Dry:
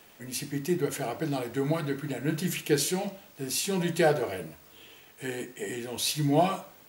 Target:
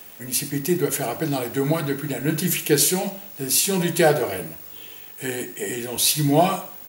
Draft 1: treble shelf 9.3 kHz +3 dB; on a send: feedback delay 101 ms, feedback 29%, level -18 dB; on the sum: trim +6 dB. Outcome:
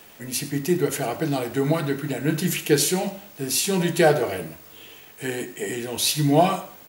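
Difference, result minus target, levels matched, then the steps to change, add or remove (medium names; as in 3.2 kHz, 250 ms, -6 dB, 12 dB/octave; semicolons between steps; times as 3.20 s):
8 kHz band -2.5 dB
change: treble shelf 9.3 kHz +12.5 dB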